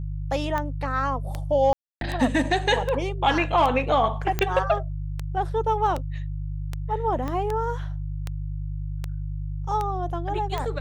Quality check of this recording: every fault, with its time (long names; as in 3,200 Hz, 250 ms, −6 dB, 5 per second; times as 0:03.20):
mains hum 50 Hz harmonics 3 −30 dBFS
scratch tick 78 rpm −15 dBFS
0:01.73–0:02.01: drop-out 282 ms
0:04.39: click −9 dBFS
0:07.28: click −18 dBFS